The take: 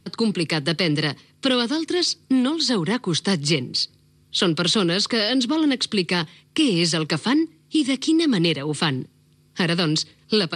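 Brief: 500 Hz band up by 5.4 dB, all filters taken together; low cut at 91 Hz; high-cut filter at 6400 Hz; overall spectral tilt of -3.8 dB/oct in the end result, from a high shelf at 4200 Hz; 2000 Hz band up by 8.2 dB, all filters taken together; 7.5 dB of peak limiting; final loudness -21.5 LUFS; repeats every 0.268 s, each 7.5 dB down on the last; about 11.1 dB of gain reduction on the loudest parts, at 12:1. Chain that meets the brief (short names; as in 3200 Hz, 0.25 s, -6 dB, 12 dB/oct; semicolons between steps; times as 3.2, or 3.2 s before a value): HPF 91 Hz; LPF 6400 Hz; bell 500 Hz +6.5 dB; bell 2000 Hz +8 dB; high shelf 4200 Hz +7.5 dB; compressor 12:1, threshold -23 dBFS; limiter -17.5 dBFS; feedback echo 0.268 s, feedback 42%, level -7.5 dB; gain +6 dB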